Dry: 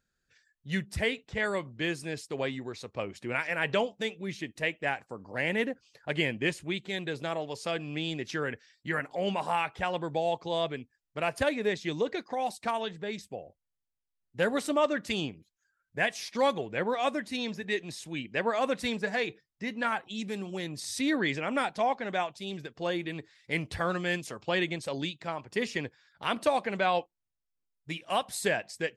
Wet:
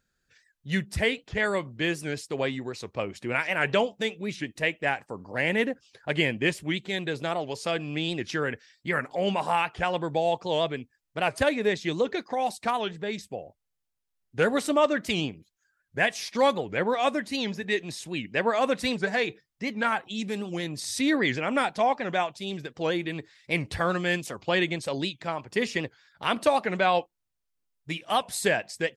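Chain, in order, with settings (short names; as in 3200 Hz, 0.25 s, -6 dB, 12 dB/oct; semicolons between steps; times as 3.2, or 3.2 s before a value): record warp 78 rpm, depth 160 cents; gain +4 dB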